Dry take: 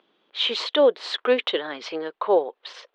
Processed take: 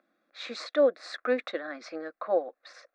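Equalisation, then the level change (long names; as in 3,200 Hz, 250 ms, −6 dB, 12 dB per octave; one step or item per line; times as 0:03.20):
phaser with its sweep stopped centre 620 Hz, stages 8
−3.5 dB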